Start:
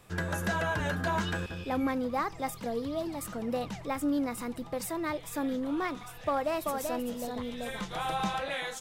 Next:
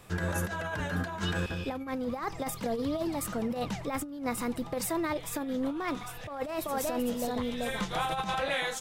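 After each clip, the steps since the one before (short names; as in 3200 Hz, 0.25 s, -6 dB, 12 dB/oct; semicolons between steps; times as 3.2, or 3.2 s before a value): negative-ratio compressor -33 dBFS, ratio -0.5; gain +2 dB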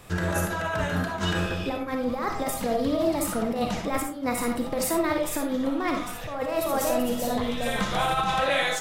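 reverb RT60 0.45 s, pre-delay 15 ms, DRR 2 dB; gain +4.5 dB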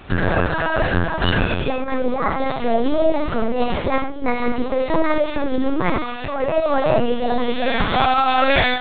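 LPC vocoder at 8 kHz pitch kept; gain +8.5 dB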